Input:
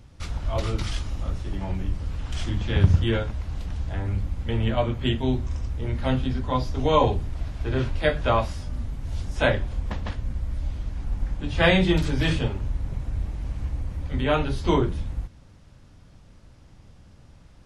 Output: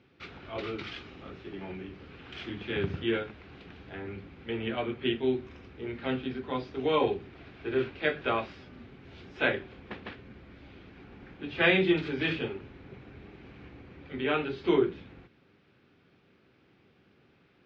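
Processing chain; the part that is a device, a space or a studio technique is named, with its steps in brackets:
kitchen radio (loudspeaker in its box 220–3,900 Hz, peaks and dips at 390 Hz +9 dB, 600 Hz −6 dB, 960 Hz −6 dB, 1,500 Hz +3 dB, 2,400 Hz +6 dB)
level −5 dB

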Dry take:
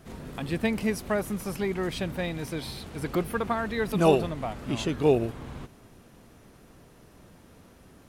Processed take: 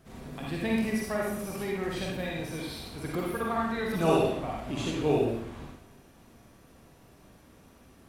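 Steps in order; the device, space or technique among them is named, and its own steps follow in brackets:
bathroom (convolution reverb RT60 0.70 s, pre-delay 43 ms, DRR −3.5 dB)
level −6.5 dB

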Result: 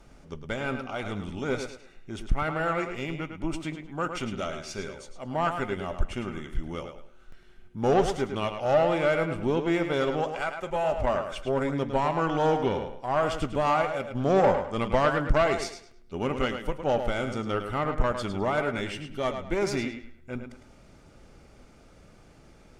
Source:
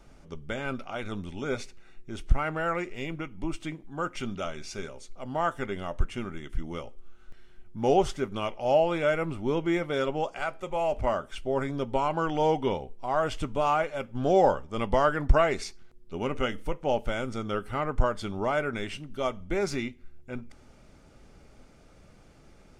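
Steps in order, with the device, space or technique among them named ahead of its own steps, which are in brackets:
rockabilly slapback (tube saturation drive 18 dB, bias 0.45; tape delay 106 ms, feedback 31%, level −7 dB, low-pass 5,800 Hz)
level +3 dB

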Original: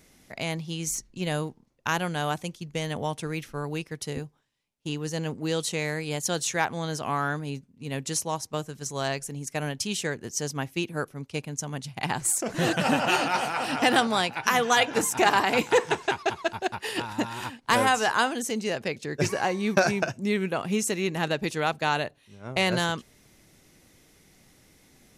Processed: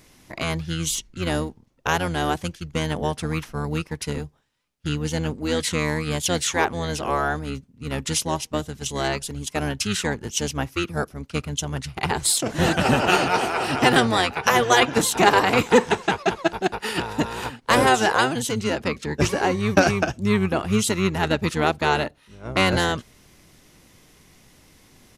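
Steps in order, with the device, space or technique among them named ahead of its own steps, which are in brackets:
octave pedal (pitch-shifted copies added −12 semitones −4 dB)
level +3.5 dB

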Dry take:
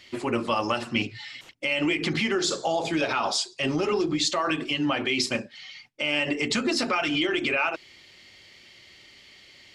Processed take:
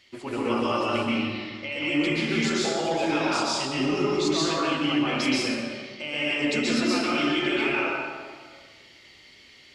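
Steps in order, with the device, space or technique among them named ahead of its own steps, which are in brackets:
0:01.00–0:01.72: low-pass filter 5,400 Hz 24 dB per octave
stairwell (convolution reverb RT60 1.7 s, pre-delay 117 ms, DRR −7.5 dB)
level −7.5 dB

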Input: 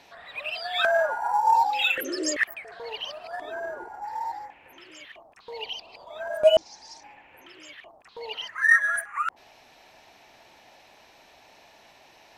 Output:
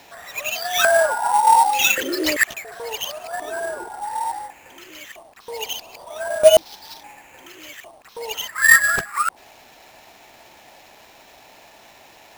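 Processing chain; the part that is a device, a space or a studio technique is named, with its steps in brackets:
early companding sampler (sample-rate reduction 9,400 Hz, jitter 0%; log-companded quantiser 6 bits)
level +6.5 dB

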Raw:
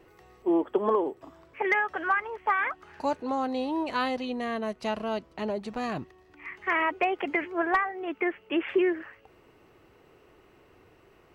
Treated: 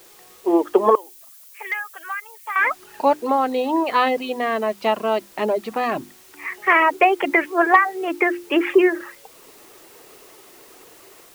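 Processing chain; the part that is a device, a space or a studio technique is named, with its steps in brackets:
notch filter 1,500 Hz, Q 19
reverb reduction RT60 0.68 s
dictaphone (band-pass filter 290–3,100 Hz; automatic gain control gain up to 7.5 dB; tape wow and flutter 23 cents; white noise bed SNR 29 dB)
mains-hum notches 50/100/150/200/250/300/350 Hz
0:00.95–0:02.56: first difference
level +4.5 dB

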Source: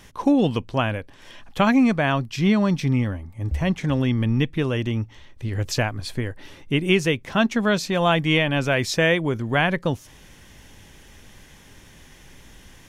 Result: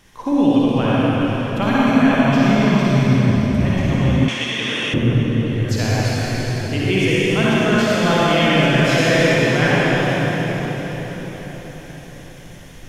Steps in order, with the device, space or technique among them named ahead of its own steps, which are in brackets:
cathedral (convolution reverb RT60 5.2 s, pre-delay 48 ms, DRR −9 dB)
0:04.28–0:04.94: meter weighting curve ITU-R 468
level −4.5 dB

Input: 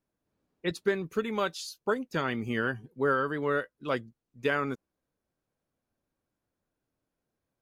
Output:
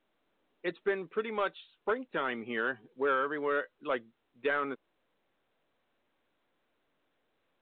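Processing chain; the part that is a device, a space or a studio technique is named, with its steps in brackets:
telephone (band-pass filter 340–3,200 Hz; soft clipping −19.5 dBFS, distortion −19 dB; mu-law 64 kbit/s 8,000 Hz)

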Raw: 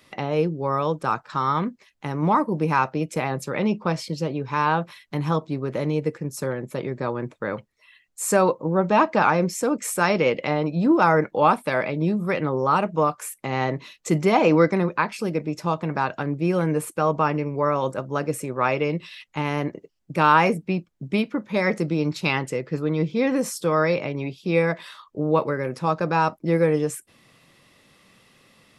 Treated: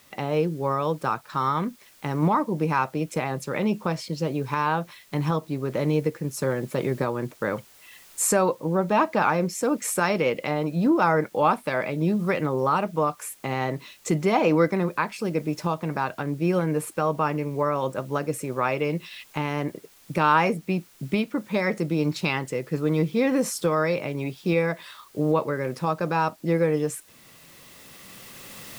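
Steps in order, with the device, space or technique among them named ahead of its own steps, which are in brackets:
cheap recorder with automatic gain (white noise bed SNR 32 dB; camcorder AGC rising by 7.3 dB per second)
level −3 dB

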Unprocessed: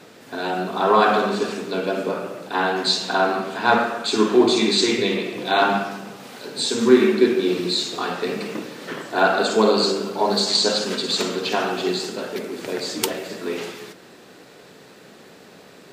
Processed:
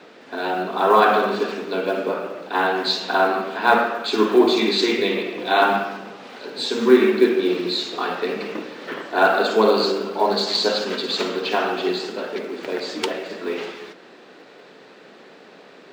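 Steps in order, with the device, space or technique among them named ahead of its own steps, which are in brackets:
early digital voice recorder (band-pass filter 250–3,900 Hz; one scale factor per block 7 bits)
level +1.5 dB

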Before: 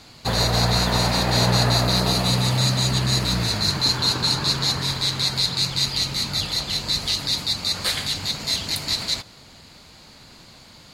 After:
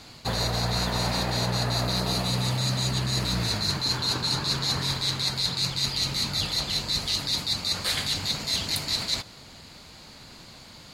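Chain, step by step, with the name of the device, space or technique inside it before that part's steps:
compression on the reversed sound (reversed playback; downward compressor, threshold −23 dBFS, peak gain reduction 8.5 dB; reversed playback)

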